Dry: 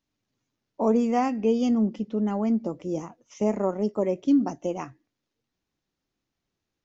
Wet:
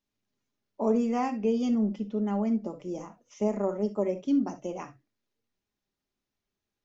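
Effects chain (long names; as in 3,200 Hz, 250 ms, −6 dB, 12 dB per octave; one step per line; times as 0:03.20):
parametric band 160 Hz −8.5 dB 0.28 octaves
convolution reverb, pre-delay 5 ms, DRR 6 dB
level −5 dB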